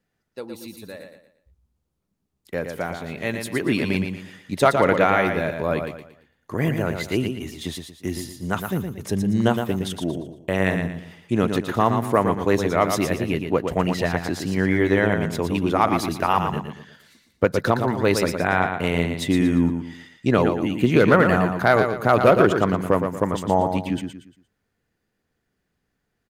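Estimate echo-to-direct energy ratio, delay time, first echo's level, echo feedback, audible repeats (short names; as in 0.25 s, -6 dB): -6.0 dB, 0.116 s, -6.5 dB, 34%, 4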